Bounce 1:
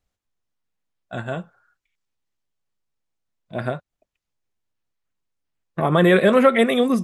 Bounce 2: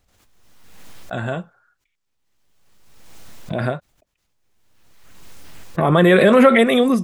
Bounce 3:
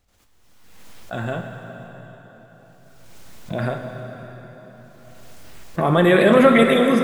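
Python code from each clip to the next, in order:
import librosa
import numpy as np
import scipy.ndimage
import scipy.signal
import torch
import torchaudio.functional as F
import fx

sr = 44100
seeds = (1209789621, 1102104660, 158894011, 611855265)

y1 = fx.pre_swell(x, sr, db_per_s=34.0)
y1 = F.gain(torch.from_numpy(y1), 2.0).numpy()
y2 = fx.rev_plate(y1, sr, seeds[0], rt60_s=4.5, hf_ratio=0.8, predelay_ms=0, drr_db=3.5)
y2 = F.gain(torch.from_numpy(y2), -2.5).numpy()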